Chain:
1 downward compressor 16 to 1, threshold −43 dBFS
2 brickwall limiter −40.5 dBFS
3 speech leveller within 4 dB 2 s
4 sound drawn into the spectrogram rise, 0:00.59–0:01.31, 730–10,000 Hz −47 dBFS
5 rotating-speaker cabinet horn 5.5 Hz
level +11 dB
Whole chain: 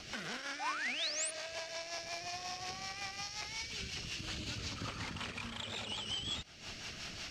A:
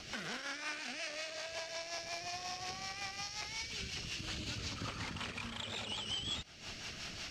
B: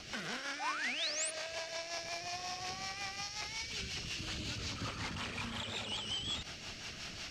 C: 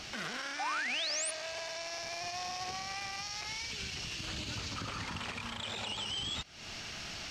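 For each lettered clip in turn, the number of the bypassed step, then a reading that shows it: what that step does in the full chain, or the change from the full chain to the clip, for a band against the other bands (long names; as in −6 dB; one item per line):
4, 8 kHz band −2.5 dB
1, average gain reduction 12.5 dB
5, change in crest factor −3.0 dB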